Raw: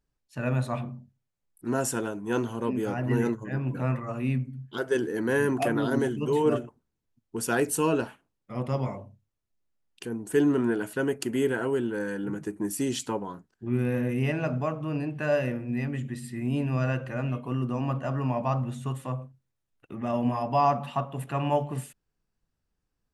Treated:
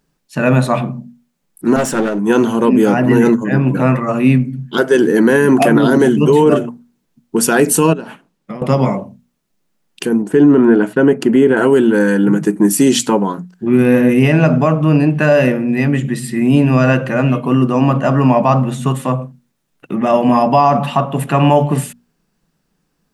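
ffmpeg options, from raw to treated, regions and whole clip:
-filter_complex "[0:a]asettb=1/sr,asplit=3[a][b][c];[a]atrim=end=1.764[d];[b]atrim=start=1.76:end=2.19,asetpts=PTS-STARTPTS,afade=t=in:d=0.004:c=qsin,afade=t=out:st=0.426:d=0.004:c=qsin,aemphasis=mode=reproduction:type=50fm,aeval=exprs='clip(val(0),-1,0.0133)':c=same[e];[c]atrim=start=2.186[f];[d][e]acrossfade=d=0.004:c1=hsin:c2=qsin[g];[g][f]acrossfade=d=0.004:c1=qsin:c2=hsin,asettb=1/sr,asplit=3[h][i][j];[h]atrim=end=7.934[k];[i]atrim=start=7.93:end=8.62,asetpts=PTS-STARTPTS,afade=t=in:d=0.004:c=qsin,afade=t=out:st=0.686:d=0.004:c=qsin,highshelf=f=7.4k:g=-6.5,acompressor=threshold=-39dB:ratio=16:attack=3.2:release=140:knee=1:detection=peak[l];[j]atrim=start=8.616[m];[k][l]acrossfade=d=0.004:c1=hsin:c2=qsin[n];[n][m]acrossfade=d=0.004:c1=qsin:c2=hsin,asettb=1/sr,asplit=3[o][p][q];[o]atrim=end=10.224[r];[p]atrim=start=10.22:end=11.57,asetpts=PTS-STARTPTS,afade=t=in:d=0.004:c=qsin,afade=t=out:st=1.346:d=0.004:c=qsin,lowpass=f=1.5k:p=1,agate=range=-33dB:threshold=-48dB:ratio=3:release=100:detection=peak[s];[q]atrim=start=11.566[t];[r][s]acrossfade=d=0.004:c1=hsin:c2=qsin[u];[u][t]acrossfade=d=0.004:c1=qsin:c2=hsin,lowshelf=f=130:t=q:w=3:g=-8,bandreject=f=60:t=h:w=6,bandreject=f=120:t=h:w=6,bandreject=f=180:t=h:w=6,bandreject=f=240:t=h:w=6,alimiter=level_in=18dB:limit=-1dB:release=50:level=0:latency=1,volume=-1dB"

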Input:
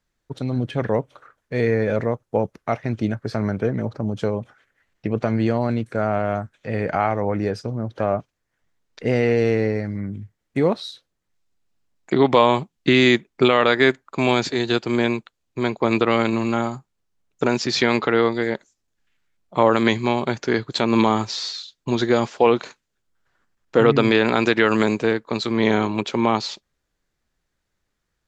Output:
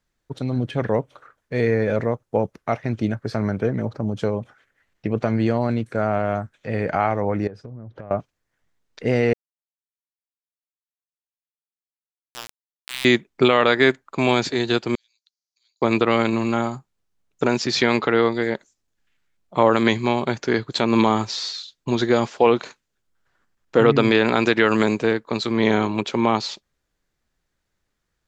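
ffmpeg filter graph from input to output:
-filter_complex "[0:a]asettb=1/sr,asplit=3[a][b][c];[a]atrim=end=7.474[d];[b]atrim=start=7.47:end=8.11,asetpts=PTS-STARTPTS,afade=t=in:d=0.004:c=qsin,afade=t=out:st=0.636:d=0.004:c=qsin,lowpass=f=1.2k:p=1,asubboost=boost=5:cutoff=200,acompressor=threshold=-33dB:ratio=8:attack=3.2:release=140:knee=1:detection=peak[e];[c]atrim=start=8.106[f];[d][e]acrossfade=d=0.004:c1=hsin:c2=qsin[g];[g][f]acrossfade=d=0.004:c1=qsin:c2=hsin,asettb=1/sr,asplit=3[h][i][j];[h]atrim=end=9.334[k];[i]atrim=start=9.33:end=13.05,asetpts=PTS-STARTPTS,afade=t=in:d=0.004:c=qsin,afade=t=out:st=3.716:d=0.004:c=qsin,aderivative,bandreject=f=510:w=11,aeval=exprs='val(0)*gte(abs(val(0)),0.0891)':c=same[l];[j]atrim=start=13.046[m];[k][l]acrossfade=d=0.004:c1=hsin:c2=qsin[n];[n][m]acrossfade=d=0.004:c1=qsin:c2=hsin,asettb=1/sr,asplit=3[o][p][q];[o]atrim=end=14.954[r];[p]atrim=start=14.95:end=15.82,asetpts=PTS-STARTPTS,afade=t=in:d=0.004:c=qsin,afade=t=out:st=0.866:d=0.004:c=qsin,acompressor=threshold=-33dB:ratio=8:attack=3.2:release=140:knee=1:detection=peak,asuperpass=centerf=5300:order=4:qfactor=2.7[s];[q]atrim=start=15.816[t];[r][s]acrossfade=d=0.004:c1=hsin:c2=qsin[u];[u][t]acrossfade=d=0.004:c1=qsin:c2=hsin"

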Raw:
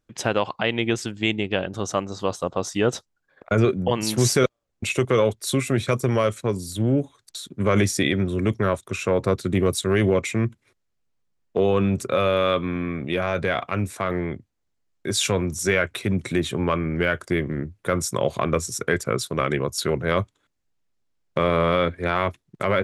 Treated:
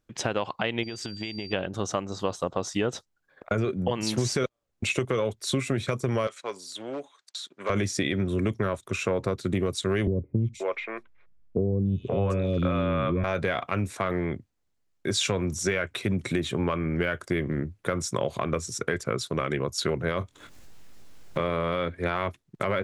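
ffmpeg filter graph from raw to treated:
-filter_complex "[0:a]asettb=1/sr,asplit=3[a][b][c];[a]atrim=end=0.834[d];[b]atrim=start=0.83:end=1.53,asetpts=PTS-STARTPTS,afade=t=in:d=0.004:c=qsin,afade=t=out:st=0.696:d=0.004:c=qsin,acompressor=threshold=-29dB:ratio=10:attack=3.2:release=140:knee=1:detection=peak,aeval=exprs='val(0)+0.00891*sin(2*PI*4700*n/s)':c=same[e];[c]atrim=start=1.526[f];[d][e]acrossfade=d=0.004:c1=hsin:c2=qsin[g];[g][f]acrossfade=d=0.004:c1=qsin:c2=hsin,asettb=1/sr,asplit=3[h][i][j];[h]atrim=end=6.274[k];[i]atrim=start=6.27:end=7.7,asetpts=PTS-STARTPTS,afade=t=in:d=0.004:c=qsin,afade=t=out:st=1.426:d=0.004:c=qsin,aeval=exprs='clip(val(0),-1,0.158)':c=same,highpass=720,lowpass=6.8k[l];[j]atrim=start=7.696[m];[k][l]acrossfade=d=0.004:c1=hsin:c2=qsin[n];[n][m]acrossfade=d=0.004:c1=qsin:c2=hsin,asettb=1/sr,asplit=3[o][p][q];[o]atrim=end=10.074[r];[p]atrim=start=10.07:end=13.24,asetpts=PTS-STARTPTS,afade=t=in:d=0.004:c=qsin,afade=t=out:st=3.166:d=0.004:c=qsin,aemphasis=mode=reproduction:type=bsi,acrossover=split=510|3500[s][t][u];[u]adelay=300[v];[t]adelay=530[w];[s][w][v]amix=inputs=3:normalize=0,atrim=end_sample=139797[x];[q]atrim=start=13.236[y];[r][x]acrossfade=d=0.004:c1=hsin:c2=qsin[z];[z][y]acrossfade=d=0.004:c1=qsin:c2=hsin,asettb=1/sr,asplit=3[aa][ab][ac];[aa]atrim=end=20.194[ad];[ab]atrim=start=20.19:end=21.41,asetpts=PTS-STARTPTS,afade=t=in:d=0.004:c=qsin,afade=t=out:st=1.216:d=0.004:c=qsin,acompressor=mode=upward:threshold=-26dB:ratio=2.5:attack=3.2:release=140:knee=2.83:detection=peak,asplit=2[ae][af];[af]adelay=23,volume=-7.5dB[ag];[ae][ag]amix=inputs=2:normalize=0,atrim=end_sample=53802[ah];[ac]atrim=start=21.406[ai];[ad][ah]acrossfade=d=0.004:c1=hsin:c2=qsin[aj];[aj][ai]acrossfade=d=0.004:c1=qsin:c2=hsin,acrossover=split=8200[ak][al];[al]acompressor=threshold=-51dB:ratio=4:attack=1:release=60[am];[ak][am]amix=inputs=2:normalize=0,alimiter=limit=-10dB:level=0:latency=1:release=456,acompressor=threshold=-22dB:ratio=6"

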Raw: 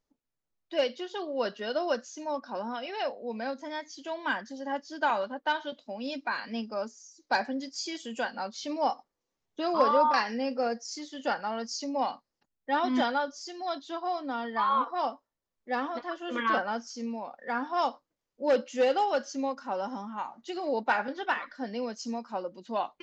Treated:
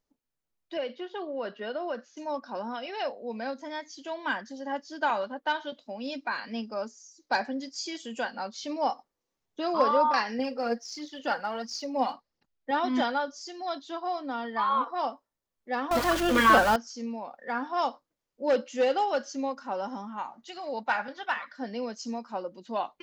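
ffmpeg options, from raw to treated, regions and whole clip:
-filter_complex "[0:a]asettb=1/sr,asplit=3[a][b][c];[a]atrim=end=0.774[d];[b]atrim=start=0.77:end=2.17,asetpts=PTS-STARTPTS,afade=t=in:d=0.004:c=qsin,afade=t=out:st=1.396:d=0.004:c=qsin,highpass=160,lowpass=2.8k,acompressor=threshold=-30dB:ratio=2.5:attack=3.2:release=140:knee=1:detection=peak[e];[c]atrim=start=2.166[f];[d][e]acrossfade=d=0.004:c1=hsin:c2=qsin[g];[g][f]acrossfade=d=0.004:c1=qsin:c2=hsin,asettb=1/sr,asplit=3[h][i][j];[h]atrim=end=10.394[k];[i]atrim=start=10.39:end=12.71,asetpts=PTS-STARTPTS,afade=t=in:d=0.004:c=qsin,afade=t=out:st=2.316:d=0.004:c=qsin,lowpass=f=6.1k:w=0.5412,lowpass=f=6.1k:w=1.3066,aphaser=in_gain=1:out_gain=1:delay=4.3:decay=0.46:speed=1.5:type=triangular[l];[j]atrim=start=12.706[m];[k][l]acrossfade=d=0.004:c1=hsin:c2=qsin[n];[n][m]acrossfade=d=0.004:c1=qsin:c2=hsin,asettb=1/sr,asplit=3[o][p][q];[o]atrim=end=15.914[r];[p]atrim=start=15.91:end=16.76,asetpts=PTS-STARTPTS,afade=t=in:d=0.004:c=qsin,afade=t=out:st=0.846:d=0.004:c=qsin,aeval=exprs='val(0)+0.5*0.0224*sgn(val(0))':c=same,acontrast=77,aeval=exprs='val(0)+0.01*(sin(2*PI*50*n/s)+sin(2*PI*2*50*n/s)/2+sin(2*PI*3*50*n/s)/3+sin(2*PI*4*50*n/s)/4+sin(2*PI*5*50*n/s)/5)':c=same[s];[q]atrim=start=16.756[t];[r][s]acrossfade=d=0.004:c1=hsin:c2=qsin[u];[u][t]acrossfade=d=0.004:c1=qsin:c2=hsin,asettb=1/sr,asplit=3[v][w][x];[v]atrim=end=20.444[y];[w]atrim=start=20.44:end=21.58,asetpts=PTS-STARTPTS,afade=t=in:d=0.004:c=qsin,afade=t=out:st=1.136:d=0.004:c=qsin,highpass=51,equalizer=f=350:t=o:w=1:g=-11[z];[x]atrim=start=21.576[aa];[y][z]acrossfade=d=0.004:c1=hsin:c2=qsin[ab];[ab][aa]acrossfade=d=0.004:c1=qsin:c2=hsin"

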